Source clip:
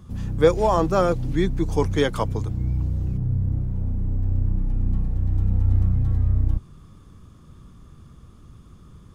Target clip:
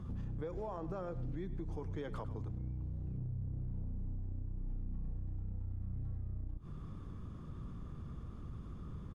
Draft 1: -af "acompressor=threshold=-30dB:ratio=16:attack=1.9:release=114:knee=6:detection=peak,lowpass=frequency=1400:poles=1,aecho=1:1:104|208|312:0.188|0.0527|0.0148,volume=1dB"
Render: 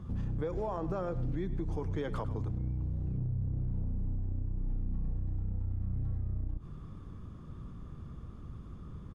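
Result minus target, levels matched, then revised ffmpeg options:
downward compressor: peak gain reduction −6.5 dB
-af "acompressor=threshold=-37dB:ratio=16:attack=1.9:release=114:knee=6:detection=peak,lowpass=frequency=1400:poles=1,aecho=1:1:104|208|312:0.188|0.0527|0.0148,volume=1dB"

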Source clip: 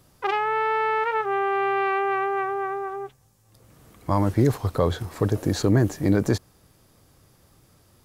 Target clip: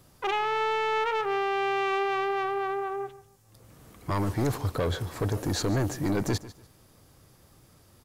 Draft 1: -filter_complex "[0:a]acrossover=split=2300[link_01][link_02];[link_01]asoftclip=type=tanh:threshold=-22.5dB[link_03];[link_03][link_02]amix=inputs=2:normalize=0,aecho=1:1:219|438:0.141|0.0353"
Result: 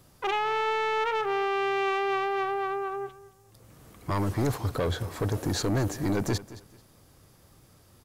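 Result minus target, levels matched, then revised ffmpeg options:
echo 73 ms late
-filter_complex "[0:a]acrossover=split=2300[link_01][link_02];[link_01]asoftclip=type=tanh:threshold=-22.5dB[link_03];[link_03][link_02]amix=inputs=2:normalize=0,aecho=1:1:146|292:0.141|0.0353"

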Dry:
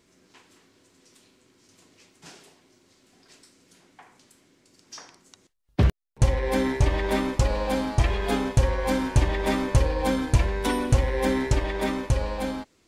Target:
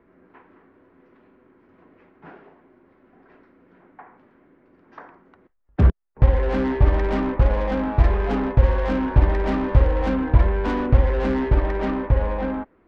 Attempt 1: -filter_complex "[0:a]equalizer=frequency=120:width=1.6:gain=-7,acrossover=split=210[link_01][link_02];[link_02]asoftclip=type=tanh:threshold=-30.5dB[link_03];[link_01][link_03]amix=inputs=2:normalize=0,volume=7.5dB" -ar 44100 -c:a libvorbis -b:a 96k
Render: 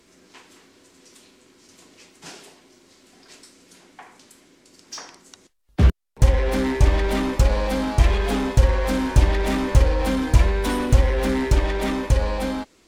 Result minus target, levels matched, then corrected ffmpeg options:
2,000 Hz band +3.0 dB
-filter_complex "[0:a]lowpass=frequency=1700:width=0.5412,lowpass=frequency=1700:width=1.3066,equalizer=frequency=120:width=1.6:gain=-7,acrossover=split=210[link_01][link_02];[link_02]asoftclip=type=tanh:threshold=-30.5dB[link_03];[link_01][link_03]amix=inputs=2:normalize=0,volume=7.5dB" -ar 44100 -c:a libvorbis -b:a 96k

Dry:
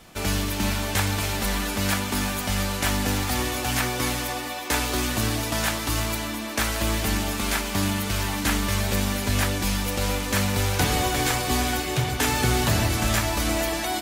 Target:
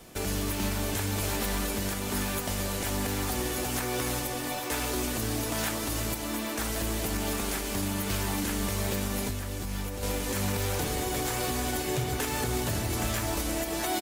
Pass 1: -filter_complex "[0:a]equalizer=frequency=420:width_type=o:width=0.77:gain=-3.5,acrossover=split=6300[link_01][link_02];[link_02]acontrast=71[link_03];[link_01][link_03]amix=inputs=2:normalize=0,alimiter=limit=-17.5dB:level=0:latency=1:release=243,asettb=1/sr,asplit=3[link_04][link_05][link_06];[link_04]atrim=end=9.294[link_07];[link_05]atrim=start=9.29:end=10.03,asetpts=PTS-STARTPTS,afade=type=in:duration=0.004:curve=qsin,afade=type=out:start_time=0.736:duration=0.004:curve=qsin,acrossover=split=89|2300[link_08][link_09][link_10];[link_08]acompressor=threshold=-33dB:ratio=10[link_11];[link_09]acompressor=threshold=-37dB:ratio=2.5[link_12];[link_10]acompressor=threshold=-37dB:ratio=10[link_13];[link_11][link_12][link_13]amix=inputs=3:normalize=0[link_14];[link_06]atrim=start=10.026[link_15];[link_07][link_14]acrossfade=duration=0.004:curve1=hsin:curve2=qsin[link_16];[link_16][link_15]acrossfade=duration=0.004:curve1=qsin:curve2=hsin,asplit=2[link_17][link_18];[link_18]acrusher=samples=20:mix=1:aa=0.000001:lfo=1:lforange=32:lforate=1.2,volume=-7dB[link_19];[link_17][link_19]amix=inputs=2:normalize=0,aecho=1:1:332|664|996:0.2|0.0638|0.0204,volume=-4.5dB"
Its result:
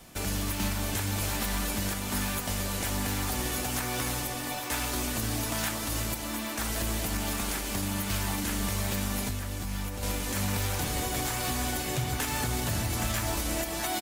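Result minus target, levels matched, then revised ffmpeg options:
500 Hz band −4.0 dB
-filter_complex "[0:a]equalizer=frequency=420:width_type=o:width=0.77:gain=5.5,acrossover=split=6300[link_01][link_02];[link_02]acontrast=71[link_03];[link_01][link_03]amix=inputs=2:normalize=0,alimiter=limit=-17.5dB:level=0:latency=1:release=243,asettb=1/sr,asplit=3[link_04][link_05][link_06];[link_04]atrim=end=9.294[link_07];[link_05]atrim=start=9.29:end=10.03,asetpts=PTS-STARTPTS,afade=type=in:duration=0.004:curve=qsin,afade=type=out:start_time=0.736:duration=0.004:curve=qsin,acrossover=split=89|2300[link_08][link_09][link_10];[link_08]acompressor=threshold=-33dB:ratio=10[link_11];[link_09]acompressor=threshold=-37dB:ratio=2.5[link_12];[link_10]acompressor=threshold=-37dB:ratio=10[link_13];[link_11][link_12][link_13]amix=inputs=3:normalize=0[link_14];[link_06]atrim=start=10.026[link_15];[link_07][link_14]acrossfade=duration=0.004:curve1=hsin:curve2=qsin[link_16];[link_16][link_15]acrossfade=duration=0.004:curve1=qsin:curve2=hsin,asplit=2[link_17][link_18];[link_18]acrusher=samples=20:mix=1:aa=0.000001:lfo=1:lforange=32:lforate=1.2,volume=-7dB[link_19];[link_17][link_19]amix=inputs=2:normalize=0,aecho=1:1:332|664|996:0.2|0.0638|0.0204,volume=-4.5dB"

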